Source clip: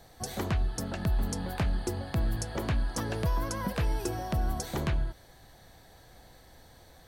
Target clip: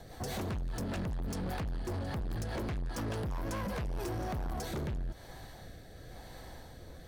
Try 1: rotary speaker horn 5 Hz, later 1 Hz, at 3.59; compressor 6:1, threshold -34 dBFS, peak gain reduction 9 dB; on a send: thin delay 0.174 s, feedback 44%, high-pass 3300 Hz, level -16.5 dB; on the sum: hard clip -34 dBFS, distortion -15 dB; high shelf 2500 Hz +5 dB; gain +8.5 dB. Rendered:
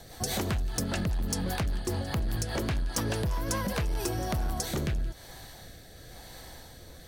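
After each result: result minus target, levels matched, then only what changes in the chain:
hard clip: distortion -8 dB; 4000 Hz band +4.0 dB
change: hard clip -42 dBFS, distortion -7 dB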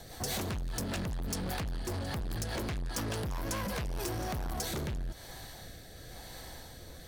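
4000 Hz band +6.5 dB
change: high shelf 2500 Hz -5 dB

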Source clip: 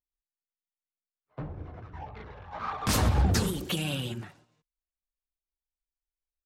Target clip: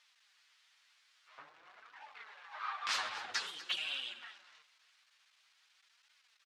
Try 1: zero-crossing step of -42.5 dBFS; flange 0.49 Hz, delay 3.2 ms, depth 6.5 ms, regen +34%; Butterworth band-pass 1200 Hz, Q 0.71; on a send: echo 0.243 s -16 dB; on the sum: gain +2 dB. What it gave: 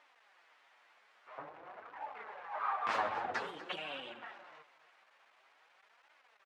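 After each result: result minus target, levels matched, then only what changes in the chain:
1000 Hz band +8.0 dB; zero-crossing step: distortion +6 dB
change: Butterworth band-pass 2500 Hz, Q 0.71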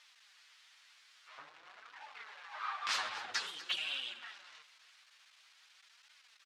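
zero-crossing step: distortion +6 dB
change: zero-crossing step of -49 dBFS

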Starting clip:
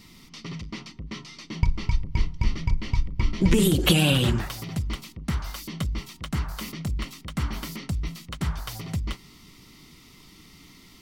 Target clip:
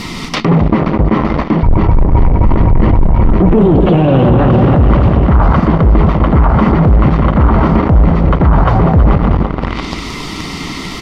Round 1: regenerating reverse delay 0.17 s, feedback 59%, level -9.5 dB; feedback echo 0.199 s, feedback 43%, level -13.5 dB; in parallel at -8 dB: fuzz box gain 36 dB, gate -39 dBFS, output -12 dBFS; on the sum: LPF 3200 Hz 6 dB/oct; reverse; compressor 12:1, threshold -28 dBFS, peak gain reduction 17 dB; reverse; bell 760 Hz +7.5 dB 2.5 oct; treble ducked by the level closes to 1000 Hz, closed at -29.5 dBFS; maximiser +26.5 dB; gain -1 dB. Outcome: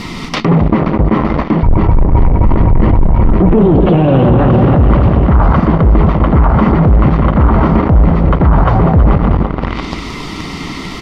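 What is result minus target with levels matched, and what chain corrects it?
8000 Hz band -4.0 dB
regenerating reverse delay 0.17 s, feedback 59%, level -9.5 dB; feedback echo 0.199 s, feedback 43%, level -13.5 dB; in parallel at -8 dB: fuzz box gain 36 dB, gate -39 dBFS, output -12 dBFS; on the sum: LPF 7100 Hz 6 dB/oct; reverse; compressor 12:1, threshold -28 dBFS, peak gain reduction 17 dB; reverse; bell 760 Hz +7.5 dB 2.5 oct; treble ducked by the level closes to 1000 Hz, closed at -29.5 dBFS; maximiser +26.5 dB; gain -1 dB

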